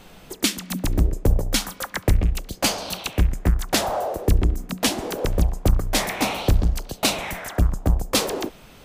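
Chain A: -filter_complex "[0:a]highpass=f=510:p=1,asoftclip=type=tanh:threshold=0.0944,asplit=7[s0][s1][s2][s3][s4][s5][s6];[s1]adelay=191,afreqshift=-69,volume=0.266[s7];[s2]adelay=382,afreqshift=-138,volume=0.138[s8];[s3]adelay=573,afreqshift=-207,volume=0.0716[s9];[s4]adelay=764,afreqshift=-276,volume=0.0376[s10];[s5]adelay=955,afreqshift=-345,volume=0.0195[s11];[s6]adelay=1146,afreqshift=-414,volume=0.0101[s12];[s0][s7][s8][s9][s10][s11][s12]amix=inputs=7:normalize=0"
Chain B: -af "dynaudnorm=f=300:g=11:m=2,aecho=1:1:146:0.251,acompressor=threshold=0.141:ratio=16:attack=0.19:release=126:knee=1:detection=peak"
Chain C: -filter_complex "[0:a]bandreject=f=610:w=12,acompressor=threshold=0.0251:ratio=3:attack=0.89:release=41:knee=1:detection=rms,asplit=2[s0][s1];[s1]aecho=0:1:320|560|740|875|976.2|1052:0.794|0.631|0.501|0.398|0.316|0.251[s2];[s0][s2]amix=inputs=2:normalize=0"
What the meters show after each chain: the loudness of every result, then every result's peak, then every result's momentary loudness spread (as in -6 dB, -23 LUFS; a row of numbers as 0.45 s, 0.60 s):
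-30.0 LUFS, -26.0 LUFS, -30.5 LUFS; -18.5 dBFS, -13.5 dBFS, -16.0 dBFS; 8 LU, 4 LU, 2 LU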